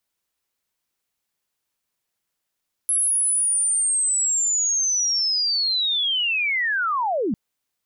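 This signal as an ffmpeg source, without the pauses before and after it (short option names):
-f lavfi -i "aevalsrc='pow(10,(-17.5-2.5*t/4.45)/20)*sin(2*PI*(11000*t-10820*t*t/(2*4.45)))':d=4.45:s=44100"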